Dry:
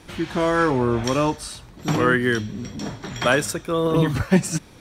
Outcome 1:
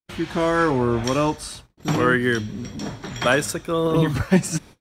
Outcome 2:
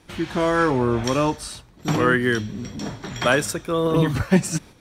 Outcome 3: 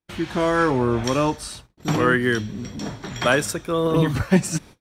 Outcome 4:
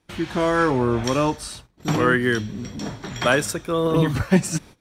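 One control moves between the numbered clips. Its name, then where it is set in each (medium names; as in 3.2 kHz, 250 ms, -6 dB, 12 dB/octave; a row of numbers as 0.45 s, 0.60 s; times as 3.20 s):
gate, range: -55 dB, -7 dB, -42 dB, -21 dB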